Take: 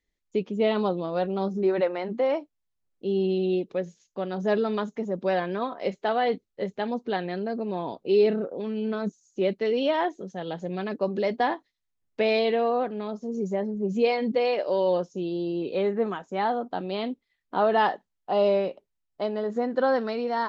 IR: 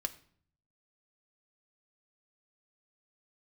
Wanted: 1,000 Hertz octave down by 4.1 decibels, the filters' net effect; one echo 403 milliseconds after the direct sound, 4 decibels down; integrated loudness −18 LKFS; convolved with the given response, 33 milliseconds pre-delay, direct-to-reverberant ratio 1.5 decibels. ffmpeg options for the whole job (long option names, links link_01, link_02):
-filter_complex "[0:a]equalizer=frequency=1000:width_type=o:gain=-6,aecho=1:1:403:0.631,asplit=2[link_01][link_02];[1:a]atrim=start_sample=2205,adelay=33[link_03];[link_02][link_03]afir=irnorm=-1:irlink=0,volume=-2dB[link_04];[link_01][link_04]amix=inputs=2:normalize=0,volume=7dB"